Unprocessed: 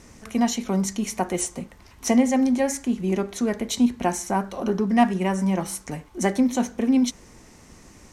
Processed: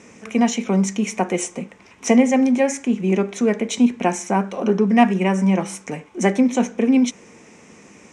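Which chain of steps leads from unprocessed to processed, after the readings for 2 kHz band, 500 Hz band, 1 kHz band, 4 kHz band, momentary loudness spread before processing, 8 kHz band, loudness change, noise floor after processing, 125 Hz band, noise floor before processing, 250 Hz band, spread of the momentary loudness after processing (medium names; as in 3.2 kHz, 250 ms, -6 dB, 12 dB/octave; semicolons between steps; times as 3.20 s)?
+6.0 dB, +5.5 dB, +3.5 dB, +2.0 dB, 10 LU, +1.0 dB, +4.5 dB, -48 dBFS, +5.0 dB, -50 dBFS, +4.0 dB, 10 LU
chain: cabinet simulation 170–8300 Hz, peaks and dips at 200 Hz +5 dB, 460 Hz +6 dB, 2.4 kHz +8 dB, 4.4 kHz -9 dB; trim +3 dB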